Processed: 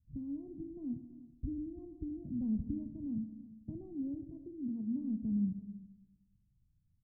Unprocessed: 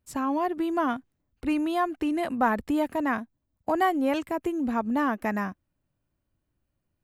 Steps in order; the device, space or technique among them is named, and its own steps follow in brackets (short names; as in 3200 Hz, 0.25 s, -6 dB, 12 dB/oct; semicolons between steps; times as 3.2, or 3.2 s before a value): 4.3–4.99 HPF 350 Hz -> 150 Hz 12 dB/oct; the neighbour's flat through the wall (LPF 180 Hz 24 dB/oct; bell 140 Hz +3 dB); echo 0.336 s -17 dB; Schroeder reverb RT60 1.2 s, combs from 25 ms, DRR 8 dB; gain +3.5 dB